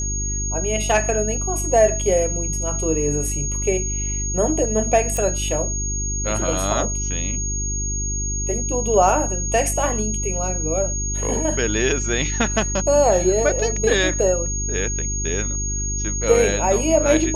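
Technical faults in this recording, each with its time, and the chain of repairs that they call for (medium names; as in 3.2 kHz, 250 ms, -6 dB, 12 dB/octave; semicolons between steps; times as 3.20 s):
hum 50 Hz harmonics 8 -26 dBFS
whine 6.6 kHz -25 dBFS
5.17 s: pop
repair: de-click; de-hum 50 Hz, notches 8; band-stop 6.6 kHz, Q 30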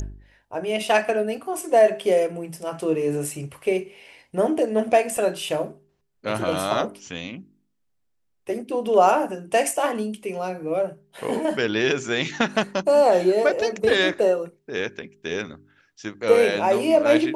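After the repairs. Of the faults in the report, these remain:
nothing left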